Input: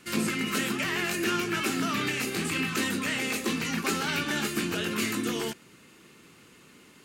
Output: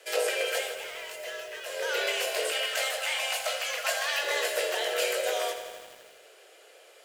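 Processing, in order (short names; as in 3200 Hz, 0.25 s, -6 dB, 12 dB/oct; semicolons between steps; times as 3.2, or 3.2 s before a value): 2.51–4.23 HPF 310 Hz 24 dB/oct; frequency shift +270 Hz; 0.47–1.95 dip -11 dB, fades 0.28 s; lo-fi delay 82 ms, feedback 80%, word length 8-bit, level -10.5 dB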